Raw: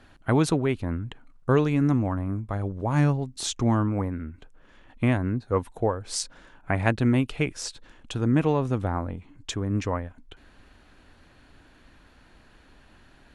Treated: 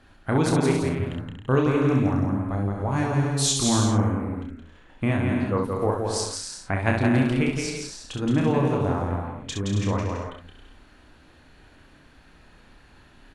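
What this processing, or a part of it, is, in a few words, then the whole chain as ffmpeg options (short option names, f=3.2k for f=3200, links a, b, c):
slapback doubling: -filter_complex "[0:a]asettb=1/sr,asplit=3[a][b][c];[a]atrim=end=3.304[d];[b]atrim=start=3.3:end=3.78,asetpts=PTS-STARTPTS,afade=t=in:d=0.004:c=qsin,afade=t=out:st=0.476:d=0.004:c=qsin,highshelf=f=3.4k:g=10.5[e];[c]atrim=start=3.776[f];[d][e]acrossfade=d=0.004:c1=hsin:c2=qsin[g];[g][f]acrossfade=d=0.004:c1=qsin:c2=hsin,asplit=3[h][i][j];[i]adelay=30,volume=-5dB[k];[j]adelay=66,volume=-5dB[l];[h][k][l]amix=inputs=3:normalize=0,aecho=1:1:170|272|333.2|369.9|392:0.631|0.398|0.251|0.158|0.1,volume=-2dB"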